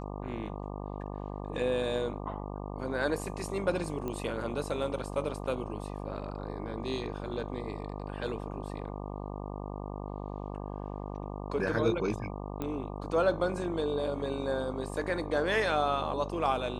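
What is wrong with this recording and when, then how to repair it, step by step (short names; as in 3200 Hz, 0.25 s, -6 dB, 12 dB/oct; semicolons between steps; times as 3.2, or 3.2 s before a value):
buzz 50 Hz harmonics 24 -39 dBFS
4.08 pop -23 dBFS
12.62 pop -22 dBFS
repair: de-click; de-hum 50 Hz, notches 24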